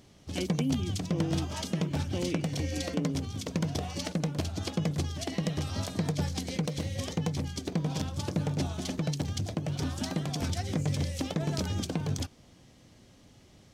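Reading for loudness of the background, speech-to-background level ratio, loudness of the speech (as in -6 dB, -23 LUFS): -33.0 LUFS, -4.5 dB, -37.5 LUFS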